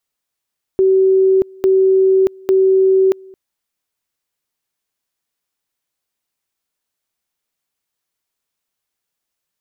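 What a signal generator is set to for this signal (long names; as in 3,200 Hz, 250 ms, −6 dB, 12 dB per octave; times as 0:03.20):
tone at two levels in turn 381 Hz −8.5 dBFS, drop 27 dB, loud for 0.63 s, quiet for 0.22 s, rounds 3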